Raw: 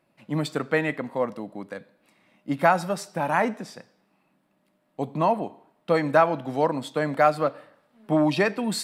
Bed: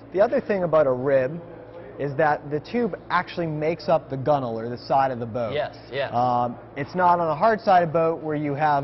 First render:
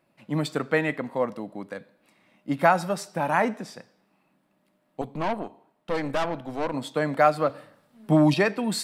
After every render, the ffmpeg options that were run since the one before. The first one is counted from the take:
-filter_complex "[0:a]asettb=1/sr,asplit=3[s0][s1][s2];[s0]atrim=end=5.014[s3];[s1]atrim=start=5.01:end=6.74,asetpts=PTS-STARTPTS,afade=t=in:d=0.004:c=qsin,afade=t=out:st=1.726:d=0.004:c=qsin,aeval=exprs='(tanh(12.6*val(0)+0.7)-tanh(0.7))/12.6':c=same[s4];[s2]atrim=start=6.736[s5];[s3][s4]acrossfade=d=0.004:c1=hsin:c2=qsin[s6];[s6][s5]acrossfade=d=0.004:c1=qsin:c2=hsin,asettb=1/sr,asplit=3[s7][s8][s9];[s7]atrim=end=7.494[s10];[s8]atrim=start=7.49:end=8.34,asetpts=PTS-STARTPTS,afade=t=in:d=0.004:c=qsin,afade=t=out:st=0.846:d=0.004:c=qsin,bass=f=250:g=8,treble=f=4000:g=7[s11];[s9]atrim=start=8.336[s12];[s10][s11]acrossfade=d=0.004:c1=hsin:c2=qsin[s13];[s13][s12]acrossfade=d=0.004:c1=qsin:c2=hsin"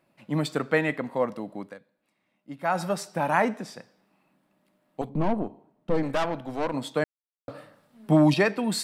-filter_complex "[0:a]asettb=1/sr,asplit=3[s0][s1][s2];[s0]atrim=end=5.094[s3];[s1]atrim=start=5.09:end=6.03,asetpts=PTS-STARTPTS,afade=t=in:d=0.004:c=qsin,afade=t=out:st=0.936:d=0.004:c=qsin,tiltshelf=f=640:g=8.5[s4];[s2]atrim=start=6.026[s5];[s3][s4]acrossfade=d=0.004:c1=hsin:c2=qsin[s6];[s6][s5]acrossfade=d=0.004:c1=qsin:c2=hsin,asplit=5[s7][s8][s9][s10][s11];[s7]atrim=end=1.79,asetpts=PTS-STARTPTS,afade=t=out:st=1.61:d=0.18:silence=0.237137[s12];[s8]atrim=start=1.79:end=2.64,asetpts=PTS-STARTPTS,volume=0.237[s13];[s9]atrim=start=2.64:end=7.04,asetpts=PTS-STARTPTS,afade=t=in:d=0.18:silence=0.237137,afade=t=out:st=4.396:d=0.004:c=hsin[s14];[s10]atrim=start=7.04:end=7.48,asetpts=PTS-STARTPTS,volume=0[s15];[s11]atrim=start=7.48,asetpts=PTS-STARTPTS,afade=t=in:d=0.004:c=hsin[s16];[s12][s13][s14][s15][s16]concat=n=5:v=0:a=1"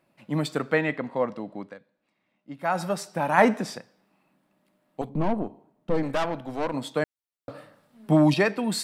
-filter_complex "[0:a]asettb=1/sr,asplit=3[s0][s1][s2];[s0]atrim=end=0.744[s3];[s1]atrim=start=0.74:end=2.55,asetpts=PTS-STARTPTS,afade=t=in:d=0.004:c=qsin,afade=t=out:st=1.806:d=0.004:c=qsin,lowpass=5700[s4];[s2]atrim=start=2.546[s5];[s3][s4]acrossfade=d=0.004:c1=hsin:c2=qsin[s6];[s6][s5]acrossfade=d=0.004:c1=qsin:c2=hsin,asplit=3[s7][s8][s9];[s7]afade=t=out:st=3.37:d=0.02[s10];[s8]acontrast=60,afade=t=in:st=3.37:d=0.02,afade=t=out:st=3.77:d=0.02[s11];[s9]afade=t=in:st=3.77:d=0.02[s12];[s10][s11][s12]amix=inputs=3:normalize=0"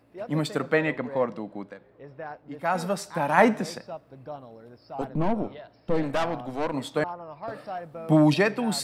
-filter_complex "[1:a]volume=0.126[s0];[0:a][s0]amix=inputs=2:normalize=0"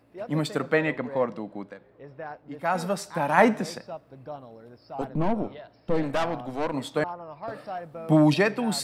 -af anull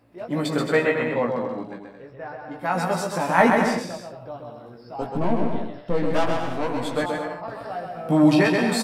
-filter_complex "[0:a]asplit=2[s0][s1];[s1]adelay=17,volume=0.668[s2];[s0][s2]amix=inputs=2:normalize=0,aecho=1:1:130|221|284.7|329.3|360.5:0.631|0.398|0.251|0.158|0.1"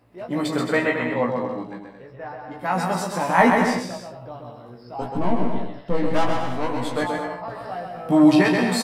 -filter_complex "[0:a]asplit=2[s0][s1];[s1]adelay=16,volume=0.501[s2];[s0][s2]amix=inputs=2:normalize=0"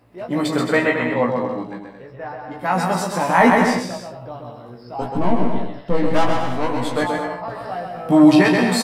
-af "volume=1.5,alimiter=limit=0.794:level=0:latency=1"

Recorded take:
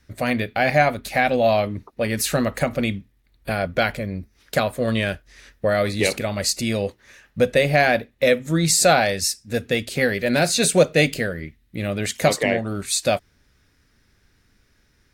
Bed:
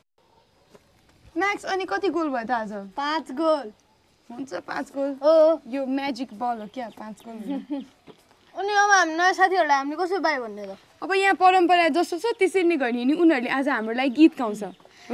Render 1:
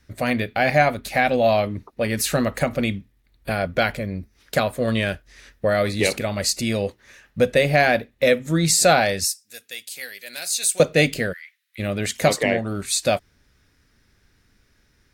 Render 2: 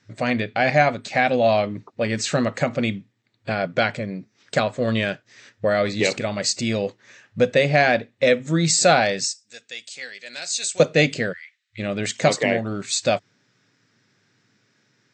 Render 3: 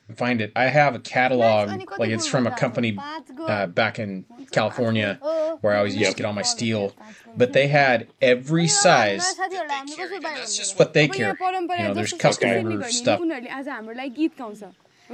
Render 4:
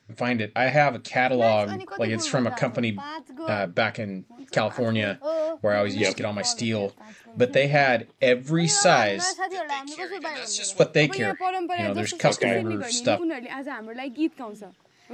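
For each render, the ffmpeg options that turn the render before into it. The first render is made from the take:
-filter_complex "[0:a]asettb=1/sr,asplit=3[s0][s1][s2];[s0]atrim=end=9.254[s3];[s1]atrim=start=9.25:end=10.8,asetpts=PTS-STARTPTS,afade=t=in:d=0.004:c=qsin,afade=t=out:st=1.546:d=0.004:c=qsin,aderivative[s4];[s2]atrim=start=10.796[s5];[s3][s4]acrossfade=d=0.004:c1=hsin:c2=qsin[s6];[s6][s5]acrossfade=d=0.004:c1=qsin:c2=hsin,asplit=3[s7][s8][s9];[s7]afade=t=out:st=11.32:d=0.02[s10];[s8]highpass=f=1400:w=0.5412,highpass=f=1400:w=1.3066,afade=t=in:st=11.32:d=0.02,afade=t=out:st=11.78:d=0.02[s11];[s9]afade=t=in:st=11.78:d=0.02[s12];[s10][s11][s12]amix=inputs=3:normalize=0"
-af "afftfilt=real='re*between(b*sr/4096,100,8200)':imag='im*between(b*sr/4096,100,8200)':win_size=4096:overlap=0.75"
-filter_complex "[1:a]volume=0.422[s0];[0:a][s0]amix=inputs=2:normalize=0"
-af "volume=0.75"

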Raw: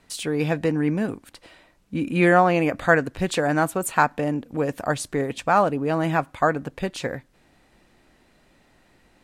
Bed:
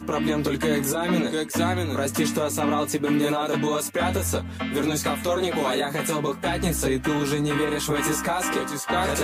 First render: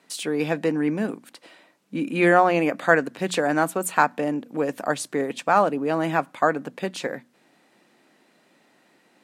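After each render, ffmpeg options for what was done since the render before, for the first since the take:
-af "highpass=f=180:w=0.5412,highpass=f=180:w=1.3066,bandreject=f=60:t=h:w=6,bandreject=f=120:t=h:w=6,bandreject=f=180:t=h:w=6,bandreject=f=240:t=h:w=6"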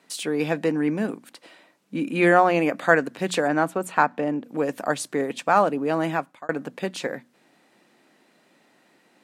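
-filter_complex "[0:a]asettb=1/sr,asplit=3[s0][s1][s2];[s0]atrim=end=3.484[s3];[s1]atrim=start=3.48:end=4.44,asetpts=PTS-STARTPTS,afade=t=in:d=0.004:c=qsin,afade=t=out:st=0.956:d=0.004:c=qsin,lowpass=f=2800:p=1[s4];[s2]atrim=start=4.436[s5];[s3][s4]acrossfade=d=0.004:c1=hsin:c2=qsin[s6];[s6][s5]acrossfade=d=0.004:c1=qsin:c2=hsin,asplit=2[s7][s8];[s7]atrim=end=6.49,asetpts=PTS-STARTPTS,afade=t=out:st=6.04:d=0.45[s9];[s8]atrim=start=6.49,asetpts=PTS-STARTPTS,afade=t=in:d=0.004:c=hsin[s10];[s9][s10]concat=n=2:v=0:a=1"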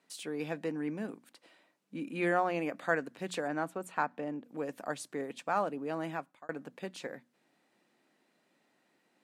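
-af "volume=0.237"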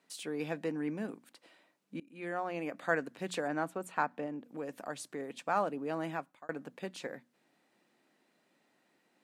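-filter_complex "[0:a]asettb=1/sr,asplit=3[s0][s1][s2];[s0]atrim=end=4.264[s3];[s1]atrim=start=4.26:end=5.43,asetpts=PTS-STARTPTS,afade=t=in:d=0.004:c=qsin,afade=t=out:st=1.166:d=0.004:c=qsin,acompressor=threshold=0.01:ratio=1.5:attack=3.2:release=140:knee=1:detection=peak[s4];[s2]atrim=start=5.426[s5];[s3][s4]acrossfade=d=0.004:c1=hsin:c2=qsin[s6];[s6][s5]acrossfade=d=0.004:c1=qsin:c2=hsin,asplit=2[s7][s8];[s7]atrim=end=2,asetpts=PTS-STARTPTS,afade=t=out:st=1.996:d=0.004:c=hsin:silence=0.0668344[s9];[s8]atrim=start=2,asetpts=PTS-STARTPTS,afade=t=in:d=1:silence=0.0668344[s10];[s9][s10]concat=n=2:v=0:a=1"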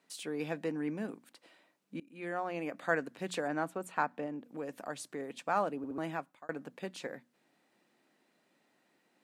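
-filter_complex "[0:a]asplit=4[s0][s1][s2][s3];[s0]atrim=end=5.842[s4];[s1]atrim=start=5.768:end=5.842[s5];[s2]atrim=start=5.768:end=5.842[s6];[s3]atrim=start=5.978[s7];[s4][s5]acrossfade=d=0.004:c1=hsin:c2=hsin[s8];[s8][s6]acrossfade=d=0.004:c1=hsin:c2=hsin[s9];[s9][s7]acrossfade=d=0.004:c1=hsin:c2=hsin"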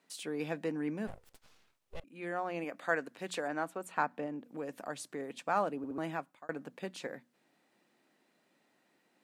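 -filter_complex "[0:a]asettb=1/sr,asplit=3[s0][s1][s2];[s0]atrim=end=1.074[s3];[s1]atrim=start=1.07:end=2.04,asetpts=PTS-STARTPTS,afade=t=in:d=0.004:c=qsin,afade=t=out:st=0.966:d=0.004:c=qsin,aeval=exprs='abs(val(0))':c=same[s4];[s2]atrim=start=2.036[s5];[s3][s4]acrossfade=d=0.004:c1=hsin:c2=qsin[s6];[s6][s5]acrossfade=d=0.004:c1=qsin:c2=hsin,asettb=1/sr,asplit=3[s7][s8][s9];[s7]atrim=end=2.644[s10];[s8]atrim=start=2.64:end=3.91,asetpts=PTS-STARTPTS,afade=t=in:d=0.004:c=qsin,afade=t=out:st=1.266:d=0.004:c=qsin,lowshelf=f=230:g=-9[s11];[s9]atrim=start=3.906[s12];[s10][s11]acrossfade=d=0.004:c1=hsin:c2=qsin[s13];[s13][s12]acrossfade=d=0.004:c1=qsin:c2=hsin"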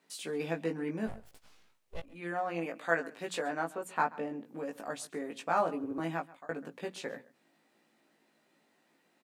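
-filter_complex "[0:a]asplit=2[s0][s1];[s1]adelay=18,volume=0.708[s2];[s0][s2]amix=inputs=2:normalize=0,asplit=2[s3][s4];[s4]adelay=134.1,volume=0.1,highshelf=f=4000:g=-3.02[s5];[s3][s5]amix=inputs=2:normalize=0"

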